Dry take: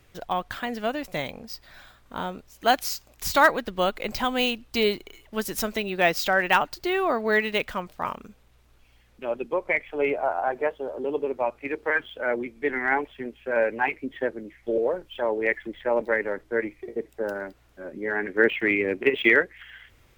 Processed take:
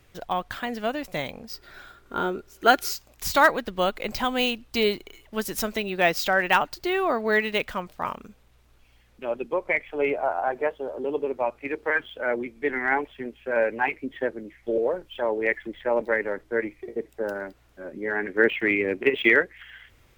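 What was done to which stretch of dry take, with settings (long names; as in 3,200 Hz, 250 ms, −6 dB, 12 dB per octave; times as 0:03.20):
0:01.52–0:02.93: hollow resonant body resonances 380/1,400 Hz, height 14 dB, ringing for 40 ms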